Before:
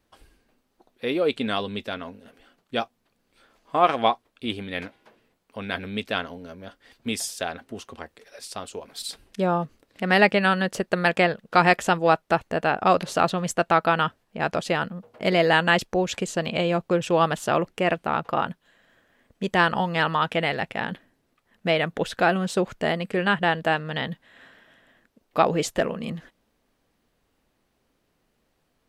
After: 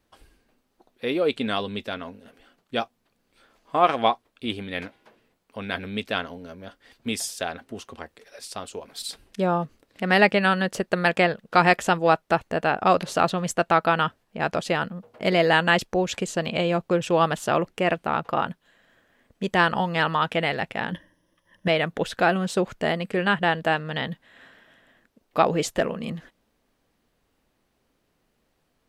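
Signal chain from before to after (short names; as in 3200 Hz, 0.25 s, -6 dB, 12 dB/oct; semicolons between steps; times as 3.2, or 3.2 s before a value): 20.92–21.68 ripple EQ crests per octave 1.2, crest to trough 15 dB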